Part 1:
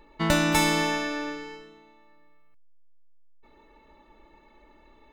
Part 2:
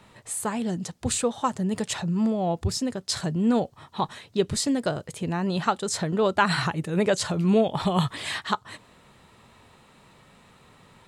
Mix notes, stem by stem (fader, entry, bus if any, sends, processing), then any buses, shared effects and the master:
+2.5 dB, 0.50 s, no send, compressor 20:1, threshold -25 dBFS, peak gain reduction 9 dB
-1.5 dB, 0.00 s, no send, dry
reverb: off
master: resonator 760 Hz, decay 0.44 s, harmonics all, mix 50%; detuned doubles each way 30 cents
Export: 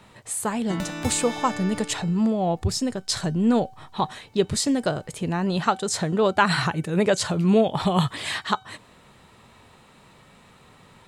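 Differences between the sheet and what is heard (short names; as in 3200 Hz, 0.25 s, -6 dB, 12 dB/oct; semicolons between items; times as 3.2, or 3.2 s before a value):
stem 2 -1.5 dB -> +8.0 dB; master: missing detuned doubles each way 30 cents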